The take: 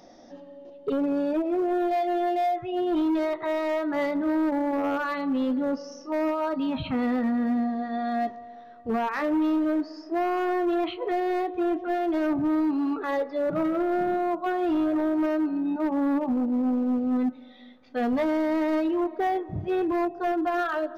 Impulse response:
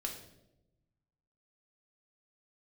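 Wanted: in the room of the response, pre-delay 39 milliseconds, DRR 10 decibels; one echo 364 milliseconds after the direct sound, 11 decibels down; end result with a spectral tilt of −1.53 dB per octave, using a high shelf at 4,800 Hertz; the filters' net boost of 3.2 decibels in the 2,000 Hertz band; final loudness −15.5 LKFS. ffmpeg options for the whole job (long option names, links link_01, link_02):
-filter_complex "[0:a]equalizer=frequency=2000:width_type=o:gain=4.5,highshelf=frequency=4800:gain=-4,aecho=1:1:364:0.282,asplit=2[link_01][link_02];[1:a]atrim=start_sample=2205,adelay=39[link_03];[link_02][link_03]afir=irnorm=-1:irlink=0,volume=-10dB[link_04];[link_01][link_04]amix=inputs=2:normalize=0,volume=9.5dB"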